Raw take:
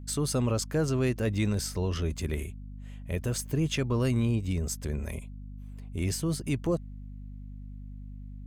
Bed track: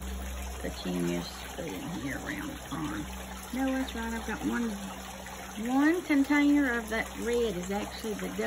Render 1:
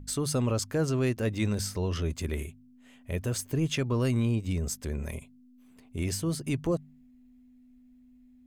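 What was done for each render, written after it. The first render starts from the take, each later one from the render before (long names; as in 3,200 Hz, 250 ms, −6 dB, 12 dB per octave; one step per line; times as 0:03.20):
hum removal 50 Hz, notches 4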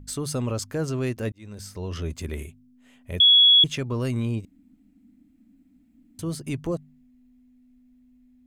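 0:01.32–0:02.03: fade in
0:03.20–0:03.64: beep over 3,360 Hz −11.5 dBFS
0:04.45–0:06.19: fill with room tone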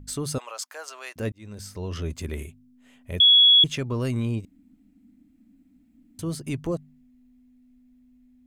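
0:00.38–0:01.16: high-pass filter 720 Hz 24 dB per octave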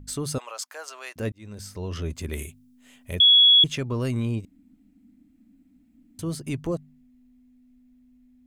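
0:02.32–0:03.15: high-shelf EQ 3,100 Hz +10 dB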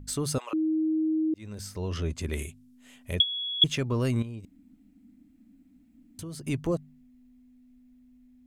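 0:00.53–0:01.34: beep over 315 Hz −23 dBFS
0:01.90–0:03.62: treble cut that deepens with the level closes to 1,200 Hz, closed at −13 dBFS
0:04.22–0:06.43: downward compressor, threshold −36 dBFS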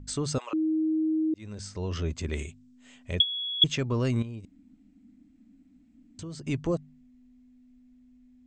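Butterworth low-pass 8,200 Hz 96 dB per octave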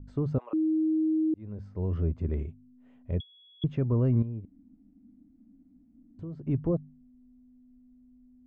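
Bessel low-pass filter 640 Hz, order 2
dynamic equaliser 110 Hz, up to +4 dB, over −40 dBFS, Q 0.71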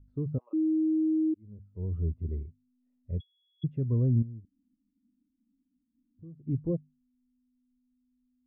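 every bin expanded away from the loudest bin 1.5 to 1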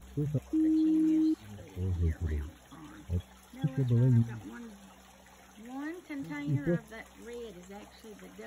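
mix in bed track −14.5 dB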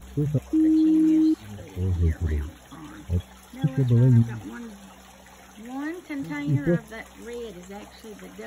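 level +7.5 dB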